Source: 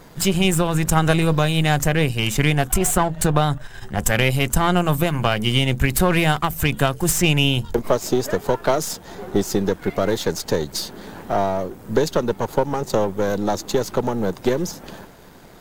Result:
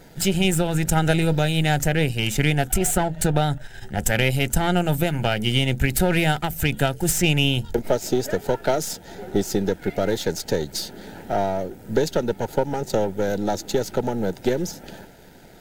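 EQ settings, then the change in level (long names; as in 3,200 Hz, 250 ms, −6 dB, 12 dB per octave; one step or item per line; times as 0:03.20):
Butterworth band-reject 1,100 Hz, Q 3.1
−2.0 dB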